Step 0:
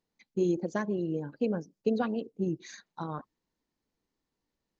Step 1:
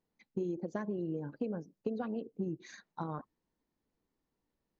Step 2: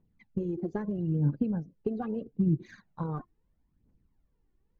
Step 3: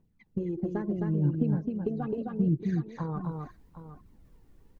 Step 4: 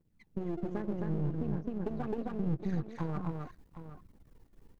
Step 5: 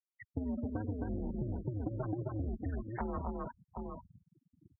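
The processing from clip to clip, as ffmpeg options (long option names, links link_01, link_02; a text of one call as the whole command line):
ffmpeg -i in.wav -af "highshelf=frequency=2500:gain=-10,acompressor=threshold=-34dB:ratio=6,volume=1dB" out.wav
ffmpeg -i in.wav -af "bass=frequency=250:gain=15,treble=frequency=4000:gain=-13,aphaser=in_gain=1:out_gain=1:delay=2.9:decay=0.6:speed=0.77:type=triangular,volume=-1dB" out.wav
ffmpeg -i in.wav -af "areverse,acompressor=mode=upward:threshold=-44dB:ratio=2.5,areverse,aecho=1:1:262|764:0.668|0.224" out.wav
ffmpeg -i in.wav -af "aeval=exprs='if(lt(val(0),0),0.251*val(0),val(0))':channel_layout=same,alimiter=limit=-24dB:level=0:latency=1:release=147,volume=1dB" out.wav
ffmpeg -i in.wav -af "highpass=frequency=200:width_type=q:width=0.5412,highpass=frequency=200:width_type=q:width=1.307,lowpass=frequency=3400:width_type=q:width=0.5176,lowpass=frequency=3400:width_type=q:width=0.7071,lowpass=frequency=3400:width_type=q:width=1.932,afreqshift=-110,acompressor=threshold=-46dB:ratio=4,afftfilt=real='re*gte(hypot(re,im),0.00282)':imag='im*gte(hypot(re,im),0.00282)':win_size=1024:overlap=0.75,volume=10.5dB" out.wav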